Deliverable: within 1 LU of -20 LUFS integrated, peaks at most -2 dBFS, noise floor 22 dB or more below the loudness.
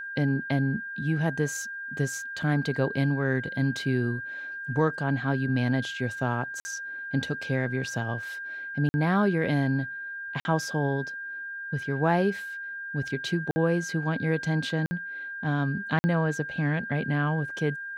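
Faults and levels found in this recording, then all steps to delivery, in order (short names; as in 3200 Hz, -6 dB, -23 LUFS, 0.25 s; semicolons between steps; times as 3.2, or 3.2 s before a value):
dropouts 6; longest dropout 50 ms; steady tone 1600 Hz; tone level -34 dBFS; loudness -28.5 LUFS; peak -11.0 dBFS; loudness target -20.0 LUFS
-> interpolate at 6.6/8.89/10.4/13.51/14.86/15.99, 50 ms; notch 1600 Hz, Q 30; gain +8.5 dB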